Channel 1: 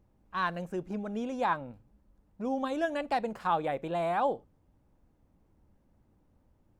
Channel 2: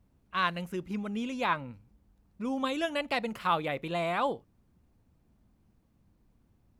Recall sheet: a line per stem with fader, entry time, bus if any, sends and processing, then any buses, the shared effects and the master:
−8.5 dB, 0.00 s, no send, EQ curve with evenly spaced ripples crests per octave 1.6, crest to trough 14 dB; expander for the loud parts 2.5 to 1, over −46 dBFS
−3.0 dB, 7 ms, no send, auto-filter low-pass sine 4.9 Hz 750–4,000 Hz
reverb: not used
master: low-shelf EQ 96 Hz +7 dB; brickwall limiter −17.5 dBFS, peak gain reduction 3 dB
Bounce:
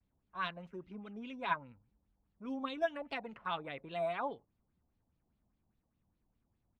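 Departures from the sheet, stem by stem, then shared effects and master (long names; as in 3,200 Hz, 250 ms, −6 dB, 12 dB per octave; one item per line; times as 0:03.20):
stem 2 −3.0 dB → −13.0 dB
master: missing low-shelf EQ 96 Hz +7 dB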